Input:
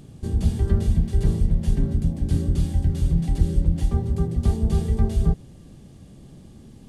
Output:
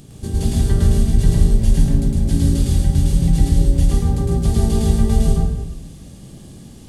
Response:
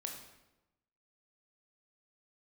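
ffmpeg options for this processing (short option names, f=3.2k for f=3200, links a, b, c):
-filter_complex "[0:a]highshelf=f=3.3k:g=9,asplit=2[a][b];[1:a]atrim=start_sample=2205,adelay=108[c];[b][c]afir=irnorm=-1:irlink=0,volume=3.5dB[d];[a][d]amix=inputs=2:normalize=0,volume=2dB"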